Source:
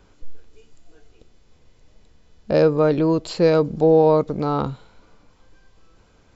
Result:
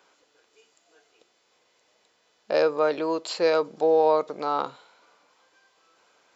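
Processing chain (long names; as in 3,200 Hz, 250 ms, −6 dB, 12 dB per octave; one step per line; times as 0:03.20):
high-pass filter 610 Hz 12 dB per octave
convolution reverb, pre-delay 3 ms, DRR 21 dB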